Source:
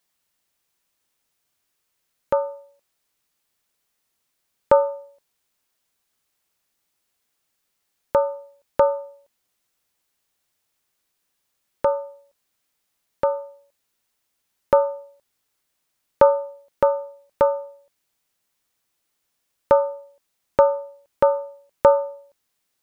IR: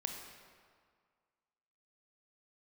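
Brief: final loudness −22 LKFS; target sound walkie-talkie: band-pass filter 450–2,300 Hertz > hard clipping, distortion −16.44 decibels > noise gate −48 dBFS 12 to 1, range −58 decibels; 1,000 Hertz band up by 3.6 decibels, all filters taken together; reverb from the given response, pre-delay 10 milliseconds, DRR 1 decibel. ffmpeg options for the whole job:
-filter_complex "[0:a]equalizer=frequency=1000:width_type=o:gain=4.5,asplit=2[link_01][link_02];[1:a]atrim=start_sample=2205,adelay=10[link_03];[link_02][link_03]afir=irnorm=-1:irlink=0,volume=-1dB[link_04];[link_01][link_04]amix=inputs=2:normalize=0,highpass=450,lowpass=2300,asoftclip=type=hard:threshold=-7dB,agate=range=-58dB:threshold=-48dB:ratio=12,volume=-2dB"

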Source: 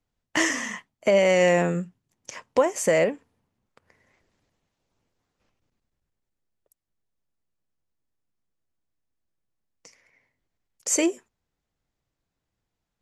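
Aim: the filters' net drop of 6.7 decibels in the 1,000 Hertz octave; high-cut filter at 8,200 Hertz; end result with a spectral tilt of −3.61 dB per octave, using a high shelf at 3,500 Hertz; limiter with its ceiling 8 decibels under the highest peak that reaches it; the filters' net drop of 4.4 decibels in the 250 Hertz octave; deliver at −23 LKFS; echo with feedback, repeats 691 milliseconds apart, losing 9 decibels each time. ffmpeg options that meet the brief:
ffmpeg -i in.wav -af "lowpass=8200,equalizer=frequency=250:width_type=o:gain=-6.5,equalizer=frequency=1000:width_type=o:gain=-9,highshelf=frequency=3500:gain=-3,alimiter=limit=-21dB:level=0:latency=1,aecho=1:1:691|1382|2073|2764:0.355|0.124|0.0435|0.0152,volume=10dB" out.wav

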